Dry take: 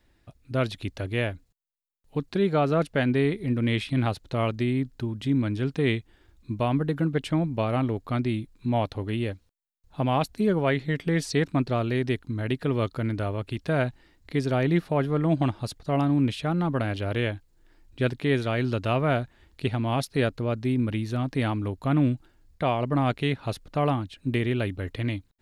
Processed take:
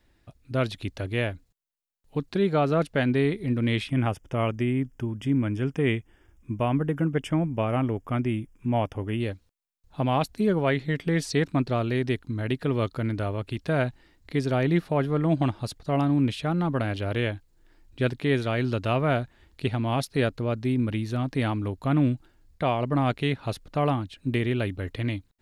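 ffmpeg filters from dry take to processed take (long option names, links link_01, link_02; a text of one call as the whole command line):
ffmpeg -i in.wav -filter_complex "[0:a]asettb=1/sr,asplit=3[link_01][link_02][link_03];[link_01]atrim=end=3.884[link_04];[link_02]atrim=start=3.88:end=9.2,asetpts=PTS-STARTPTS,afade=type=in:duration=0.004:curve=qsin,afade=type=out:start_time=5.316:duration=0.004:curve=qsin,asuperstop=centerf=4100:order=4:qfactor=2.2[link_05];[link_03]atrim=start=9.196[link_06];[link_04][link_05]acrossfade=duration=0.004:curve1=hsin:curve2=qsin[link_07];[link_07][link_06]acrossfade=duration=0.004:curve1=qsin:curve2=hsin" out.wav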